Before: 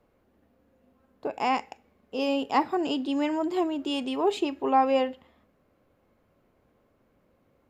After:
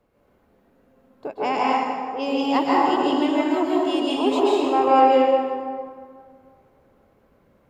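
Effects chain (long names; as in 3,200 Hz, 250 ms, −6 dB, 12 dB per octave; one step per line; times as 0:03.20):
0:01.33–0:02.28: low-pass that shuts in the quiet parts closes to 410 Hz, open at −22 dBFS
dense smooth reverb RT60 2.1 s, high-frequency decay 0.55×, pre-delay 120 ms, DRR −6 dB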